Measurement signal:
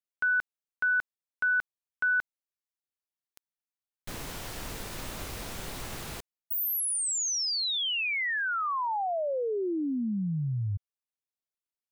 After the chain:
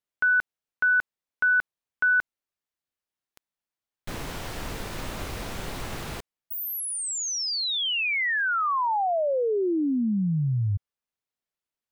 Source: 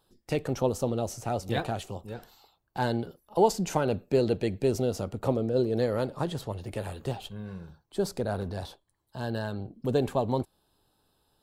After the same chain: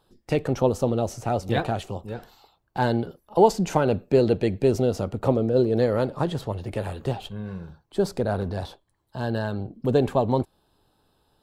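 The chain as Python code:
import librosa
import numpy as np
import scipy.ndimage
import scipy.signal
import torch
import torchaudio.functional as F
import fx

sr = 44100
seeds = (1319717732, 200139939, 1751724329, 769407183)

y = fx.high_shelf(x, sr, hz=4700.0, db=-8.0)
y = y * librosa.db_to_amplitude(5.5)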